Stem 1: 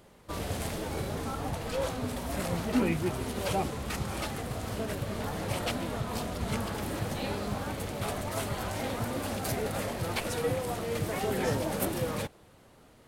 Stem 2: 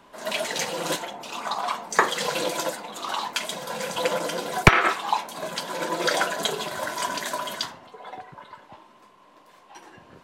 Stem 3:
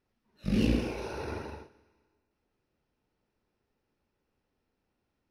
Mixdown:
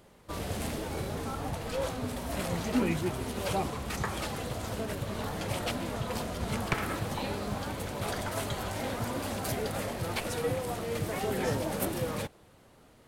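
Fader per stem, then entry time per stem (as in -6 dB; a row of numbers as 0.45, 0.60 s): -1.0, -17.0, -15.0 dB; 0.00, 2.05, 0.00 s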